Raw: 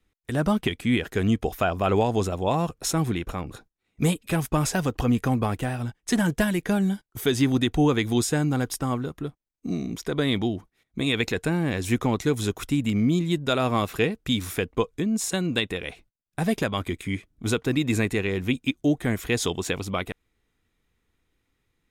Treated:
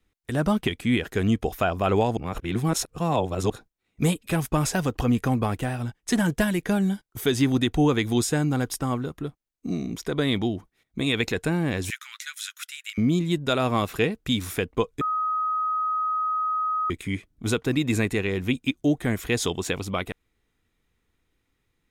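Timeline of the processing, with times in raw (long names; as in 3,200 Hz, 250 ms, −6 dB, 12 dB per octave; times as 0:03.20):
0:02.17–0:03.50: reverse
0:11.90–0:12.98: Butterworth high-pass 1,400 Hz 48 dB per octave
0:15.01–0:16.90: beep over 1,260 Hz −22.5 dBFS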